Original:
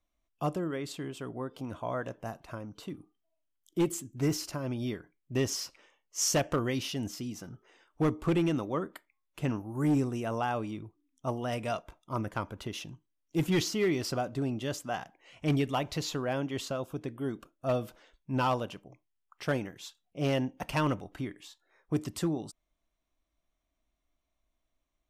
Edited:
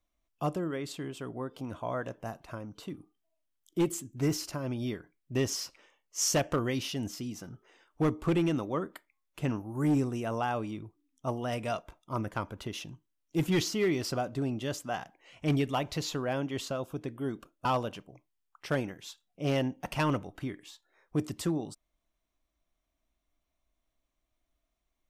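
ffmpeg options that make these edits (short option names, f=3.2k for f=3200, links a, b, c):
-filter_complex "[0:a]asplit=2[a][b];[a]atrim=end=17.652[c];[b]atrim=start=18.418[d];[c][d]acrossfade=d=0.004:c1=hsin:c2=hsin"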